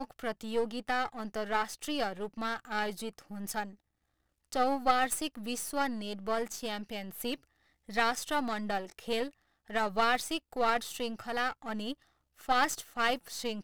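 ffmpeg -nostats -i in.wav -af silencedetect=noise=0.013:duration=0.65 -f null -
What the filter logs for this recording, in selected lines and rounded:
silence_start: 3.65
silence_end: 4.52 | silence_duration: 0.87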